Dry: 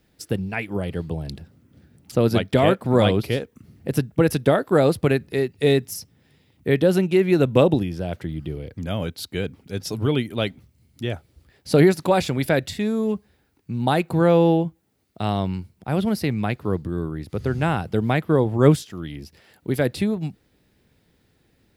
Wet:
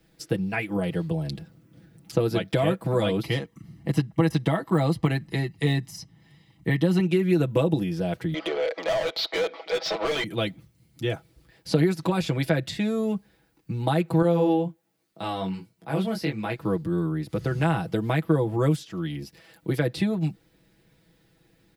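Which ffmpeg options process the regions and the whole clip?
ffmpeg -i in.wav -filter_complex "[0:a]asettb=1/sr,asplit=3[link_01][link_02][link_03];[link_01]atrim=end=3.234[link_04];[link_02]atrim=start=3.23:end=7,asetpts=PTS-STARTPTS,afade=type=in:duration=0.004:curve=qsin,afade=type=out:start_time=3.766:duration=0.004:curve=qsin,highshelf=frequency=10000:gain=-8.5,aecho=1:1:1:0.54,atrim=end_sample=166257,deesser=0.65[link_05];[link_03]atrim=start=6.996[link_06];[link_04][link_05]acrossfade=duration=0.004:curve1=hsin:curve2=qsin[link_07];[link_07][link_06]acrossfade=duration=0.004:curve1=qsin:curve2=hsin,asettb=1/sr,asplit=3[link_08][link_09][link_10];[link_08]atrim=end=8.344[link_11];[link_09]atrim=start=8.34:end=10.24,asetpts=PTS-STARTPTS,afade=type=in:duration=0.004:curve=qsin,afade=type=out:start_time=1.896:duration=0.004:curve=qsin,highpass=frequency=500:width=0.5412,highpass=frequency=500:width=1.3066,equalizer=frequency=630:width_type=q:width=4:gain=6,equalizer=frequency=990:width_type=q:width=4:gain=-3,equalizer=frequency=1600:width_type=q:width=4:gain=-9,equalizer=frequency=2700:width_type=q:width=4:gain=-7,lowpass=frequency=4300:width=0.5412,lowpass=frequency=4300:width=1.3066,asplit=2[link_12][link_13];[link_13]highpass=frequency=720:poles=1,volume=31dB,asoftclip=type=tanh:threshold=-16.5dB[link_14];[link_12][link_14]amix=inputs=2:normalize=0,lowpass=frequency=3400:poles=1,volume=-6dB[link_15];[link_10]atrim=start=10.236[link_16];[link_11][link_15]acrossfade=duration=0.004:curve1=hsin:curve2=qsin[link_17];[link_17][link_16]acrossfade=duration=0.004:curve1=qsin:curve2=hsin,asettb=1/sr,asplit=3[link_18][link_19][link_20];[link_18]atrim=end=14.224[link_21];[link_19]atrim=start=14.22:end=16.58,asetpts=PTS-STARTPTS,afade=type=in:duration=0.004:curve=qsin,afade=type=out:start_time=2.356:duration=0.004:curve=qsin,highpass=frequency=230:poles=1,flanger=delay=17:depth=5.3:speed=1.3[link_22];[link_20]atrim=start=16.576[link_23];[link_21][link_22]acrossfade=duration=0.004:curve1=hsin:curve2=qsin[link_24];[link_24][link_23]acrossfade=duration=0.004:curve1=qsin:curve2=hsin,acrossover=split=240|6600[link_25][link_26][link_27];[link_25]acompressor=threshold=-27dB:ratio=4[link_28];[link_26]acompressor=threshold=-24dB:ratio=4[link_29];[link_27]acompressor=threshold=-51dB:ratio=4[link_30];[link_28][link_29][link_30]amix=inputs=3:normalize=0,aecho=1:1:6.1:0.77,volume=-1dB" out.wav

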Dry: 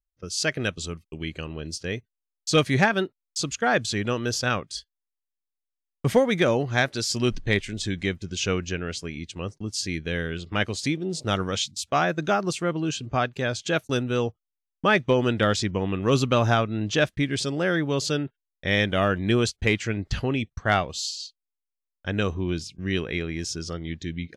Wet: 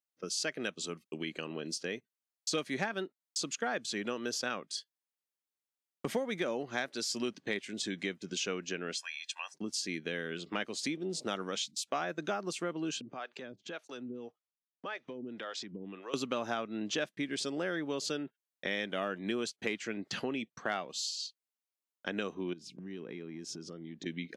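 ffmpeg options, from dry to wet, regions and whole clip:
ffmpeg -i in.wav -filter_complex "[0:a]asettb=1/sr,asplit=3[link_01][link_02][link_03];[link_01]atrim=end=8.954[link_04];[link_02]atrim=start=8.95:end=9.54,asetpts=PTS-STARTPTS,afade=type=in:duration=0.004:curve=qsin,afade=type=out:start_time=0.586:duration=0.004:curve=qsin,highpass=frequency=950:width=0.5412,highpass=frequency=950:width=1.3066,aecho=1:1:1.2:0.81,atrim=end_sample=26019[link_05];[link_03]atrim=start=9.536[link_06];[link_04][link_05]acrossfade=duration=0.004:curve1=hsin:curve2=qsin[link_07];[link_07][link_06]acrossfade=duration=0.004:curve1=qsin:curve2=hsin,asettb=1/sr,asplit=3[link_08][link_09][link_10];[link_08]atrim=end=13.014[link_11];[link_09]atrim=start=13.01:end=16.14,asetpts=PTS-STARTPTS,afade=type=in:duration=0.004:curve=qsin,afade=type=out:start_time=3.126:duration=0.004:curve=qsin,lowpass=5700,acompressor=threshold=-32dB:ratio=10:attack=3.2:release=140:knee=1:detection=peak,acrossover=split=420[link_12][link_13];[link_12]aeval=exprs='val(0)*(1-1/2+1/2*cos(2*PI*1.8*n/s))':channel_layout=same[link_14];[link_13]aeval=exprs='val(0)*(1-1/2-1/2*cos(2*PI*1.8*n/s))':channel_layout=same[link_15];[link_14][link_15]amix=inputs=2:normalize=0[link_16];[link_10]atrim=start=16.136[link_17];[link_11][link_16]acrossfade=duration=0.004:curve1=hsin:curve2=qsin[link_18];[link_18][link_17]acrossfade=duration=0.004:curve1=qsin:curve2=hsin,asettb=1/sr,asplit=3[link_19][link_20][link_21];[link_19]atrim=end=22.534[link_22];[link_20]atrim=start=22.53:end=24.06,asetpts=PTS-STARTPTS,afade=type=in:duration=0.004:curve=qsin,afade=type=out:start_time=1.526:duration=0.004:curve=qsin,tiltshelf=frequency=660:gain=6.5,acompressor=threshold=-36dB:ratio=8:attack=3.2:release=140:knee=1:detection=peak[link_23];[link_21]atrim=start=24.056[link_24];[link_22][link_23]acrossfade=duration=0.004:curve1=hsin:curve2=qsin[link_25];[link_25][link_24]acrossfade=duration=0.004:curve1=qsin:curve2=hsin,highpass=frequency=200:width=0.5412,highpass=frequency=200:width=1.3066,acompressor=threshold=-35dB:ratio=3" out.wav

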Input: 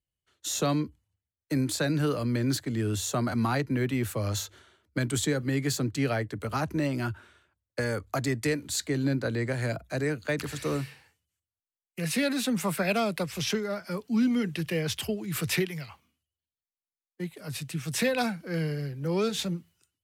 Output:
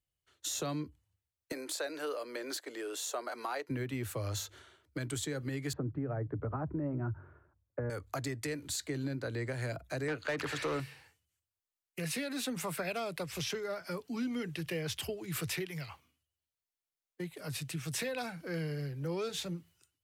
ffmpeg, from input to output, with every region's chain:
ffmpeg -i in.wav -filter_complex "[0:a]asettb=1/sr,asplit=3[link_01][link_02][link_03];[link_01]atrim=end=1.524[link_04];[link_02]atrim=start=1.52:end=3.69,asetpts=PTS-STARTPTS,afade=type=in:duration=0.004:curve=qsin,afade=type=out:start_time=2.166:duration=0.004:curve=qsin,highpass=frequency=440:width=0.5412,highpass=frequency=440:width=1.3066,tiltshelf=frequency=650:gain=3[link_05];[link_03]atrim=start=3.686[link_06];[link_04][link_05]acrossfade=duration=0.004:curve1=hsin:curve2=qsin[link_07];[link_07][link_06]acrossfade=duration=0.004:curve1=qsin:curve2=hsin,asettb=1/sr,asplit=3[link_08][link_09][link_10];[link_08]atrim=end=5.734[link_11];[link_09]atrim=start=5.73:end=7.9,asetpts=PTS-STARTPTS,afade=type=in:duration=0.004:curve=qsin,afade=type=out:start_time=2.166:duration=0.004:curve=qsin,lowpass=frequency=1400:width=0.5412,lowpass=frequency=1400:width=1.3066,lowshelf=frequency=450:gain=8,bandreject=frequency=46.33:width_type=h:width=4,bandreject=frequency=92.66:width_type=h:width=4,bandreject=frequency=138.99:width_type=h:width=4[link_12];[link_10]atrim=start=7.896[link_13];[link_11][link_12]acrossfade=duration=0.004:curve1=hsin:curve2=qsin[link_14];[link_14][link_13]acrossfade=duration=0.004:curve1=qsin:curve2=hsin,asettb=1/sr,asplit=3[link_15][link_16][link_17];[link_15]atrim=end=10.084[link_18];[link_16]atrim=start=10.08:end=10.8,asetpts=PTS-STARTPTS,afade=type=in:duration=0.004:curve=qsin,afade=type=out:start_time=0.716:duration=0.004:curve=qsin,highshelf=frequency=4300:gain=-9.5,asplit=2[link_19][link_20];[link_20]highpass=frequency=720:poles=1,volume=19dB,asoftclip=type=tanh:threshold=-18dB[link_21];[link_19][link_21]amix=inputs=2:normalize=0,lowpass=frequency=4000:poles=1,volume=-6dB[link_22];[link_17]atrim=start=10.796[link_23];[link_18][link_22]acrossfade=duration=0.004:curve1=hsin:curve2=qsin[link_24];[link_24][link_23]acrossfade=duration=0.004:curve1=qsin:curve2=hsin,equalizer=frequency=210:width=6.2:gain=-14,alimiter=limit=-20.5dB:level=0:latency=1:release=178,acompressor=threshold=-38dB:ratio=2" out.wav

